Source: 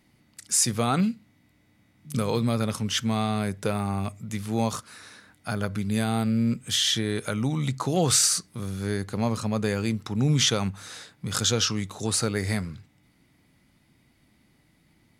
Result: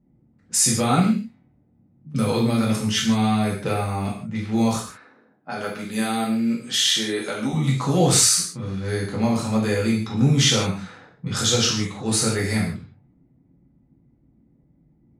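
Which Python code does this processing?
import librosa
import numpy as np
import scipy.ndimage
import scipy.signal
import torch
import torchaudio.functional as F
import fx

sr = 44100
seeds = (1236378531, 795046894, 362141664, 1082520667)

y = fx.env_lowpass(x, sr, base_hz=430.0, full_db=-23.5)
y = fx.highpass(y, sr, hz=280.0, slope=12, at=(4.88, 7.53))
y = fx.rev_gated(y, sr, seeds[0], gate_ms=190, shape='falling', drr_db=-5.0)
y = y * 10.0 ** (-1.5 / 20.0)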